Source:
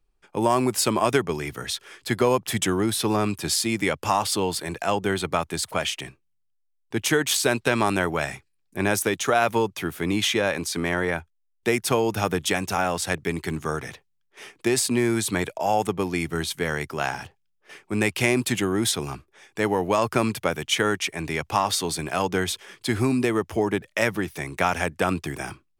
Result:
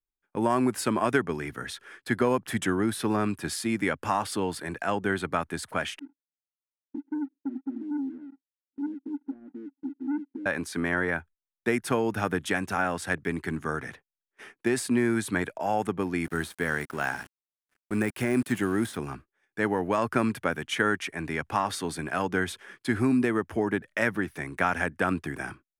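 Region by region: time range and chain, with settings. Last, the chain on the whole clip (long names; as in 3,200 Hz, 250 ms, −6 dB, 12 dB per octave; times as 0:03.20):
0:05.99–0:10.46: flat-topped band-pass 280 Hz, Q 7.6 + leveller curve on the samples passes 2
0:16.24–0:18.97: de-essing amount 65% + high-shelf EQ 7,700 Hz +11.5 dB + centre clipping without the shift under −35.5 dBFS
whole clip: graphic EQ with 15 bands 250 Hz +6 dB, 1,600 Hz +9 dB, 10,000 Hz +7 dB; noise gate −41 dBFS, range −20 dB; high-shelf EQ 3,500 Hz −10.5 dB; level −5.5 dB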